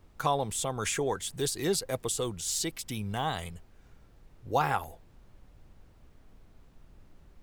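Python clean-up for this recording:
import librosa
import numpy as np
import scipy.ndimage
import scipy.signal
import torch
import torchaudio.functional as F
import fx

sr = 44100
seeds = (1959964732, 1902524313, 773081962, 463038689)

y = fx.fix_interpolate(x, sr, at_s=(3.87, 4.84), length_ms=2.7)
y = fx.noise_reduce(y, sr, print_start_s=3.66, print_end_s=4.16, reduce_db=21.0)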